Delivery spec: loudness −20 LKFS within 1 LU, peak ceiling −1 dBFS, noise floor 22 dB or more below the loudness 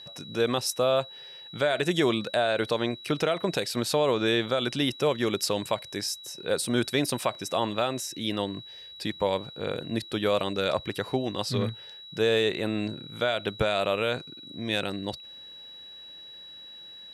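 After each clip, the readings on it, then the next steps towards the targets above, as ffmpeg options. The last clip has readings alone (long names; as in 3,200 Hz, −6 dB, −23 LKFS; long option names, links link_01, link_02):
interfering tone 3,900 Hz; level of the tone −43 dBFS; integrated loudness −28.0 LKFS; sample peak −12.0 dBFS; target loudness −20.0 LKFS
→ -af "bandreject=frequency=3900:width=30"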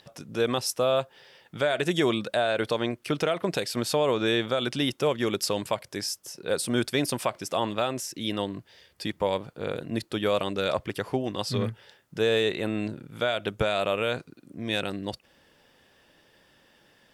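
interfering tone none found; integrated loudness −28.0 LKFS; sample peak −12.0 dBFS; target loudness −20.0 LKFS
→ -af "volume=8dB"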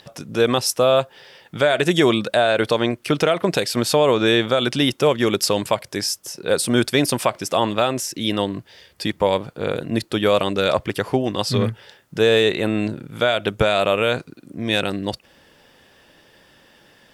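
integrated loudness −20.0 LKFS; sample peak −4.0 dBFS; background noise floor −55 dBFS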